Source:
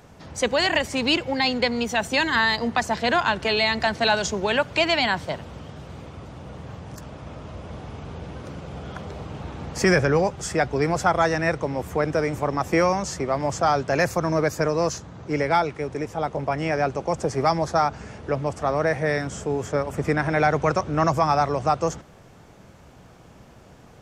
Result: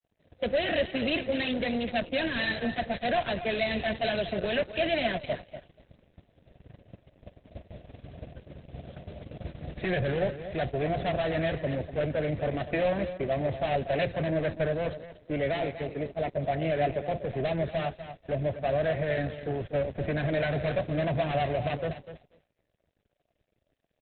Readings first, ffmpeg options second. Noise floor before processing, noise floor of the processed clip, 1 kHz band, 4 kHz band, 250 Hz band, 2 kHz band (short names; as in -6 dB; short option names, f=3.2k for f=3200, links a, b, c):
-49 dBFS, -77 dBFS, -11.0 dB, -9.5 dB, -6.0 dB, -9.0 dB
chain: -filter_complex "[0:a]aresample=11025,asoftclip=type=tanh:threshold=-24dB,aresample=44100,lowshelf=f=380:g=5.5,bandreject=f=173:t=h:w=4,bandreject=f=346:t=h:w=4,bandreject=f=519:t=h:w=4,bandreject=f=692:t=h:w=4,bandreject=f=865:t=h:w=4,bandreject=f=1.038k:t=h:w=4,bandreject=f=1.211k:t=h:w=4,bandreject=f=1.384k:t=h:w=4,bandreject=f=1.557k:t=h:w=4,bandreject=f=1.73k:t=h:w=4,bandreject=f=1.903k:t=h:w=4,bandreject=f=2.076k:t=h:w=4,bandreject=f=2.249k:t=h:w=4,bandreject=f=2.422k:t=h:w=4,bandreject=f=2.595k:t=h:w=4,bandreject=f=2.768k:t=h:w=4,bandreject=f=2.941k:t=h:w=4,bandreject=f=3.114k:t=h:w=4,bandreject=f=3.287k:t=h:w=4,bandreject=f=3.46k:t=h:w=4,bandreject=f=3.633k:t=h:w=4,bandreject=f=3.806k:t=h:w=4,bandreject=f=3.979k:t=h:w=4,bandreject=f=4.152k:t=h:w=4,bandreject=f=4.325k:t=h:w=4,bandreject=f=4.498k:t=h:w=4,bandreject=f=4.671k:t=h:w=4,bandreject=f=4.844k:t=h:w=4,bandreject=f=5.017k:t=h:w=4,bandreject=f=5.19k:t=h:w=4,asplit=2[a][b];[b]acompressor=threshold=-34dB:ratio=16,volume=3dB[c];[a][c]amix=inputs=2:normalize=0,agate=range=-20dB:threshold=-25dB:ratio=16:detection=peak,lowpass=3.4k,aecho=1:1:243|486|729:0.299|0.0597|0.0119,aeval=exprs='sgn(val(0))*max(abs(val(0))-0.00188,0)':c=same,superequalizer=8b=2:9b=0.282:10b=0.316,crystalizer=i=4:c=0,volume=-7dB" -ar 48000 -c:a libopus -b:a 8k